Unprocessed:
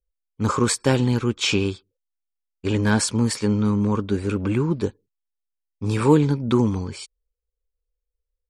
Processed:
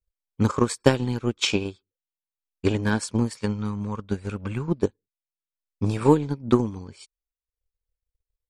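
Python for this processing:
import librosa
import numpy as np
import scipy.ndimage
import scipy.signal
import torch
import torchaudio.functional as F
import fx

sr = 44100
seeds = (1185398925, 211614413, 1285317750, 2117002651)

y = fx.peak_eq(x, sr, hz=320.0, db=-11.5, octaves=0.72, at=(3.35, 4.68))
y = fx.transient(y, sr, attack_db=12, sustain_db=-8)
y = y * 10.0 ** (-7.0 / 20.0)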